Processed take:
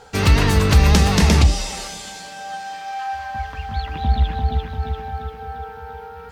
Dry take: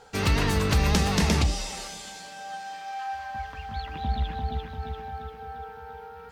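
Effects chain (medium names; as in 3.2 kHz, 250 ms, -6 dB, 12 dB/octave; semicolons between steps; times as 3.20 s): peaking EQ 73 Hz +4.5 dB 1.3 oct; trim +6.5 dB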